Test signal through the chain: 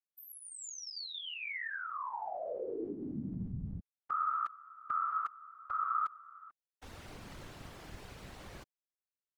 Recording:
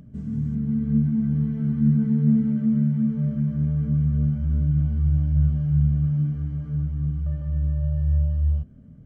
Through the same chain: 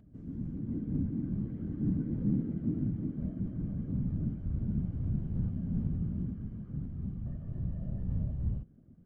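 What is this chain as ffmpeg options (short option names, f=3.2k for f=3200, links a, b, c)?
-af "aemphasis=mode=reproduction:type=50kf,afftfilt=real='hypot(re,im)*cos(2*PI*random(0))':imag='hypot(re,im)*sin(2*PI*random(1))':win_size=512:overlap=0.75,volume=-6dB"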